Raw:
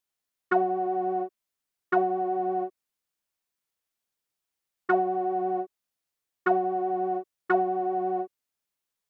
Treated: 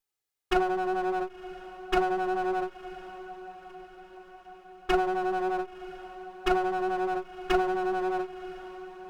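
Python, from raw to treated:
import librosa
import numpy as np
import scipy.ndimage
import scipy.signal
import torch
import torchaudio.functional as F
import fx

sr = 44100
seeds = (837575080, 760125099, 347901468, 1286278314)

y = fx.lower_of_two(x, sr, delay_ms=2.4)
y = fx.echo_diffused(y, sr, ms=1017, feedback_pct=56, wet_db=-15)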